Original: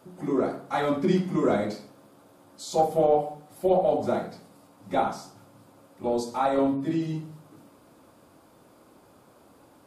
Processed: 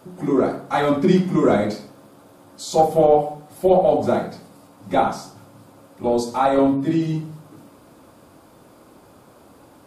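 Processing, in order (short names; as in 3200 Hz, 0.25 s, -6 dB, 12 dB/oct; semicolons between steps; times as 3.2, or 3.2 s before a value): low shelf 120 Hz +3.5 dB; gain +6.5 dB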